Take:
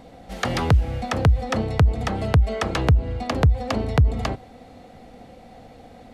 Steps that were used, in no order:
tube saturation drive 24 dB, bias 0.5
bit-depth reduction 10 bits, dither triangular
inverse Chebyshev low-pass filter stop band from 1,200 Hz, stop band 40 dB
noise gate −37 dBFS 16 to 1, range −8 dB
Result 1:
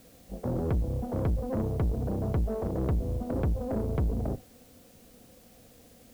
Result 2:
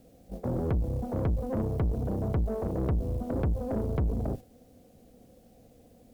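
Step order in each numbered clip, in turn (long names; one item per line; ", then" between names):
inverse Chebyshev low-pass filter, then tube saturation, then noise gate, then bit-depth reduction
inverse Chebyshev low-pass filter, then bit-depth reduction, then tube saturation, then noise gate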